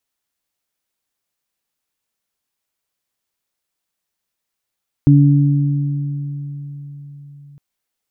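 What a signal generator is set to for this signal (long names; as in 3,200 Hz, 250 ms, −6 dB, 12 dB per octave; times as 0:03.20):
harmonic partials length 2.51 s, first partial 143 Hz, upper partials −3.5 dB, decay 4.60 s, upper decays 2.68 s, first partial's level −6.5 dB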